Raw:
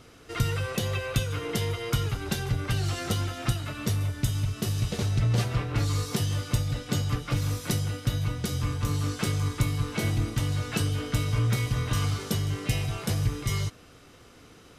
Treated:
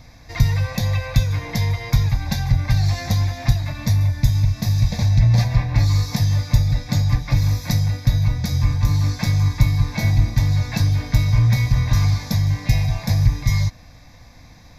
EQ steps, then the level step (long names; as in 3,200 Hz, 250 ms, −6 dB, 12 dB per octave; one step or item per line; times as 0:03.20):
low-shelf EQ 74 Hz +10.5 dB
phaser with its sweep stopped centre 2,000 Hz, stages 8
+7.5 dB